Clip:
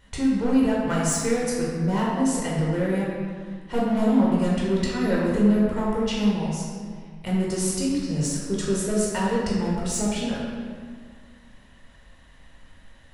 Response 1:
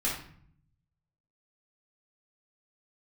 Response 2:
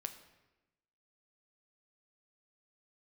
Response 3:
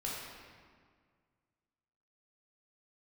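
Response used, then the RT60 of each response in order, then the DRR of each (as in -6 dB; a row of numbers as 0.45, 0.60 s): 3; 0.55, 1.0, 1.8 s; -5.5, 7.0, -5.5 dB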